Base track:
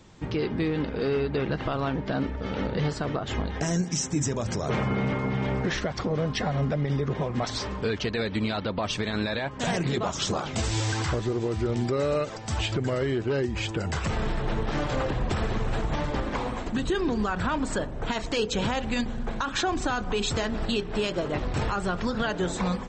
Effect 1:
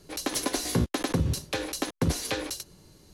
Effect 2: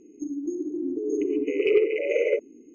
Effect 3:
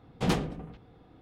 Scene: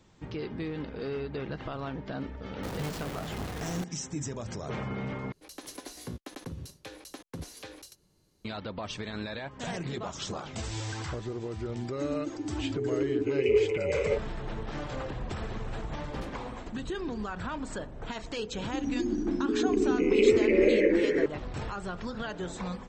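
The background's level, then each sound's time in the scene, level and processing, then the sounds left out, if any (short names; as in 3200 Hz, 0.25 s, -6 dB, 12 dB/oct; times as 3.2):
base track -8.5 dB
2.63 add 3 -5 dB + infinite clipping
5.32 replace with 1 -14.5 dB
11.79 add 2 -6.5 dB + comb 7.1 ms, depth 58%
15.92 add 3 -17.5 dB
18.52 add 2 -2 dB + echoes that change speed 98 ms, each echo -2 st, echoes 3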